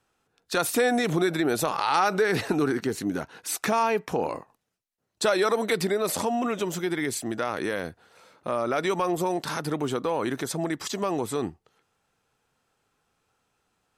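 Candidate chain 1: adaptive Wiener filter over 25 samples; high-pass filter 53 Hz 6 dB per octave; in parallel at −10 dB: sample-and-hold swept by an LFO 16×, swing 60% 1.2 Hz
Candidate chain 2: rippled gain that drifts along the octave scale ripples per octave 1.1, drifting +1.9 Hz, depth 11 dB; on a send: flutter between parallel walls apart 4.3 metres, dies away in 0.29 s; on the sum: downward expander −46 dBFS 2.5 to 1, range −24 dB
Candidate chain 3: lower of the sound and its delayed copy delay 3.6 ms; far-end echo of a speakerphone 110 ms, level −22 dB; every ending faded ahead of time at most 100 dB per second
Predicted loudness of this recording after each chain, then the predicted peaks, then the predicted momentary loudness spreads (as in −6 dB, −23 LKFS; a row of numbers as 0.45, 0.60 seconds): −26.0, −23.5, −30.5 LKFS; −9.0, −7.0, −13.5 dBFS; 8, 8, 11 LU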